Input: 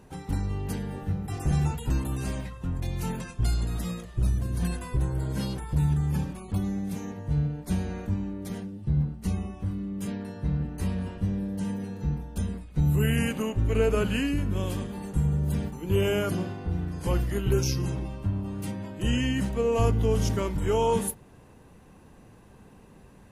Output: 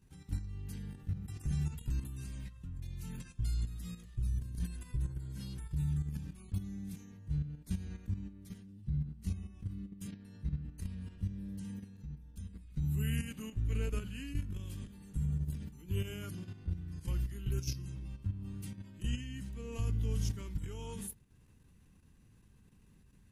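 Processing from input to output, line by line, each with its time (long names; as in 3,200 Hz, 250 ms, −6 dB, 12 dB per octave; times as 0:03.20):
0:11.96–0:12.53: clip gain −5.5 dB
whole clip: guitar amp tone stack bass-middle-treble 6-0-2; output level in coarse steps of 10 dB; level +8 dB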